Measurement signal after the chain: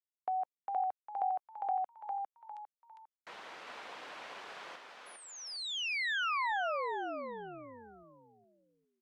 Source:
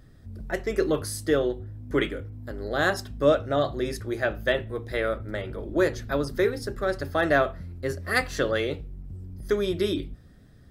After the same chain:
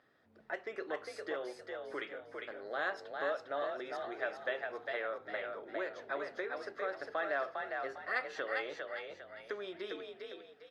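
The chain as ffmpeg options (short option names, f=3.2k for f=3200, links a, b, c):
-filter_complex "[0:a]highshelf=f=2.3k:g=-4.5,acompressor=threshold=-30dB:ratio=2.5,highpass=650,lowpass=3.3k,asplit=5[a][b][c][d][e];[b]adelay=403,afreqshift=46,volume=-4dB[f];[c]adelay=806,afreqshift=92,volume=-13.1dB[g];[d]adelay=1209,afreqshift=138,volume=-22.2dB[h];[e]adelay=1612,afreqshift=184,volume=-31.4dB[i];[a][f][g][h][i]amix=inputs=5:normalize=0,volume=-2.5dB" -ar 48000 -c:a libopus -b:a 64k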